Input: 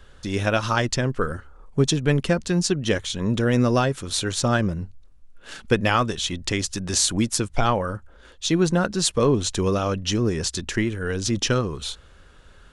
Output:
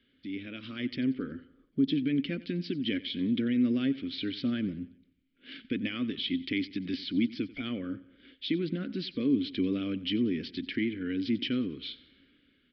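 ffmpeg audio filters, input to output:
-filter_complex "[0:a]asettb=1/sr,asplit=3[s0][s1][s2];[s0]atrim=end=1.344[s3];[s1]atrim=start=1.34:end=1.9,asetpts=PTS-STARTPTS,afade=t=in:d=0.004:c=qsin,afade=t=out:st=0.556:d=0.004:c=qsin,equalizer=f=2300:w=2.5:g=-10[s4];[s2]atrim=start=1.896[s5];[s3][s4]acrossfade=d=0.004:c1=hsin:c2=qsin[s6];[s6][s5]acrossfade=d=0.004:c1=qsin:c2=hsin,asplit=2[s7][s8];[s8]acompressor=threshold=0.0355:ratio=6,volume=0.794[s9];[s7][s9]amix=inputs=2:normalize=0,alimiter=limit=0.266:level=0:latency=1:release=25,dynaudnorm=f=210:g=7:m=3.16,asplit=3[s10][s11][s12];[s10]bandpass=f=270:t=q:w=8,volume=1[s13];[s11]bandpass=f=2290:t=q:w=8,volume=0.501[s14];[s12]bandpass=f=3010:t=q:w=8,volume=0.355[s15];[s13][s14][s15]amix=inputs=3:normalize=0,asplit=2[s16][s17];[s17]aecho=0:1:92|184|276|368:0.112|0.0527|0.0248|0.0116[s18];[s16][s18]amix=inputs=2:normalize=0,aresample=11025,aresample=44100,volume=0.562"

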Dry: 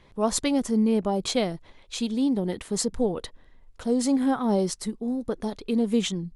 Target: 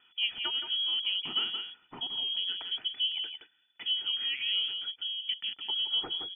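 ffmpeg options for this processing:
-af "highpass=83,aecho=1:1:1.9:0.48,aecho=1:1:170:0.376,acompressor=threshold=0.00562:ratio=1.5,agate=range=0.398:threshold=0.00316:ratio=16:detection=peak,lowpass=f=3000:t=q:w=0.5098,lowpass=f=3000:t=q:w=0.6013,lowpass=f=3000:t=q:w=0.9,lowpass=f=3000:t=q:w=2.563,afreqshift=-3500,volume=1.19"

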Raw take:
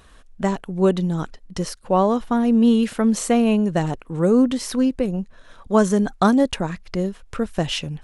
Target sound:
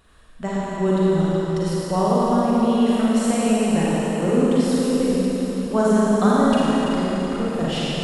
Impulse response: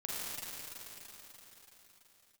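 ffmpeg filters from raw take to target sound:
-filter_complex "[0:a]bandreject=f=6100:w=11[s0];[1:a]atrim=start_sample=2205[s1];[s0][s1]afir=irnorm=-1:irlink=0,volume=0.794"

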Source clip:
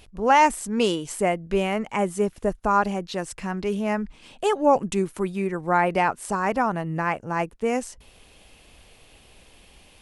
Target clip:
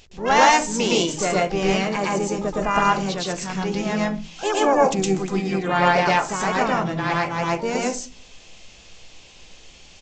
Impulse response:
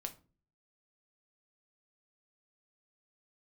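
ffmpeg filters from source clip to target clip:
-filter_complex "[0:a]asplit=4[s0][s1][s2][s3];[s1]asetrate=35002,aresample=44100,atempo=1.25992,volume=0.282[s4];[s2]asetrate=55563,aresample=44100,atempo=0.793701,volume=0.178[s5];[s3]asetrate=88200,aresample=44100,atempo=0.5,volume=0.224[s6];[s0][s4][s5][s6]amix=inputs=4:normalize=0,highshelf=f=3700:g=11,asplit=2[s7][s8];[1:a]atrim=start_sample=2205,highshelf=f=7600:g=7.5,adelay=114[s9];[s8][s9]afir=irnorm=-1:irlink=0,volume=1.68[s10];[s7][s10]amix=inputs=2:normalize=0,aresample=16000,aresample=44100,volume=0.708"

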